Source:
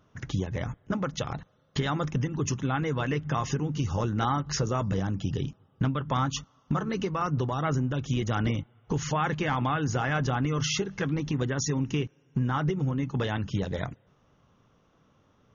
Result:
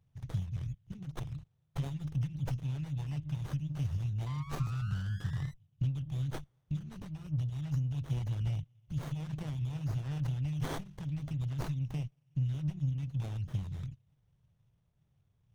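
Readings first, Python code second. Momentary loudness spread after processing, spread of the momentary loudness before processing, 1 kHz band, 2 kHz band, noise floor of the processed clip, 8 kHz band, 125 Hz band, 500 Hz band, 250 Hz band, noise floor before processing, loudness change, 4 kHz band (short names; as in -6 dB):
8 LU, 6 LU, -20.0 dB, -18.0 dB, -74 dBFS, n/a, -4.0 dB, -19.5 dB, -11.0 dB, -65 dBFS, -7.5 dB, -16.0 dB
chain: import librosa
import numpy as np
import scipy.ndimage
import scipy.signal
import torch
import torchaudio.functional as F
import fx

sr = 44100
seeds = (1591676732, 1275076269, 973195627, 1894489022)

y = scipy.signal.sosfilt(scipy.signal.cheby1(3, 1.0, [140.0, 2900.0], 'bandstop', fs=sr, output='sos'), x)
y = fx.spec_paint(y, sr, seeds[0], shape='rise', start_s=4.26, length_s=1.28, low_hz=1000.0, high_hz=2000.0, level_db=-45.0)
y = fx.running_max(y, sr, window=17)
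y = y * librosa.db_to_amplitude(-2.5)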